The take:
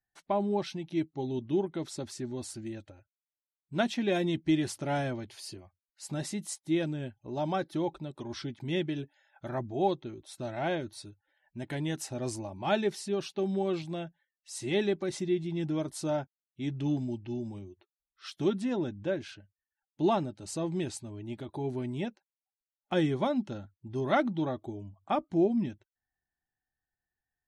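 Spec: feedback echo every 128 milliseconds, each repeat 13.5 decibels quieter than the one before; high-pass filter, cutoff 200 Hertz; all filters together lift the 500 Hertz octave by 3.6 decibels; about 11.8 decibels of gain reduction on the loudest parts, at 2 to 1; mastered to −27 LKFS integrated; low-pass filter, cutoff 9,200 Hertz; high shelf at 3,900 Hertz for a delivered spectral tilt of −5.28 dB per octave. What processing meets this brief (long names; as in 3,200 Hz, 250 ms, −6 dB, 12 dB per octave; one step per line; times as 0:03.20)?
high-pass filter 200 Hz
low-pass filter 9,200 Hz
parametric band 500 Hz +5.5 dB
high-shelf EQ 3,900 Hz −5 dB
downward compressor 2 to 1, threshold −42 dBFS
repeating echo 128 ms, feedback 21%, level −13.5 dB
level +13.5 dB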